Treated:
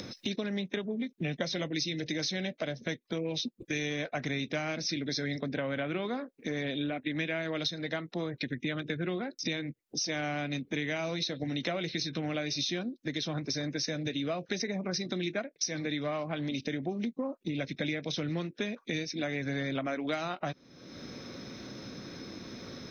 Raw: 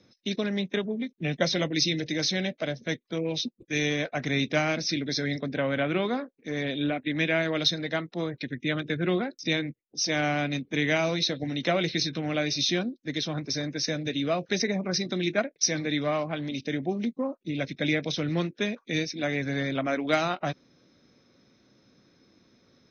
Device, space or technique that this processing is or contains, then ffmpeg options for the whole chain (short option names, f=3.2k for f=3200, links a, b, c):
upward and downward compression: -af "acompressor=mode=upward:threshold=-28dB:ratio=2.5,acompressor=threshold=-30dB:ratio=6"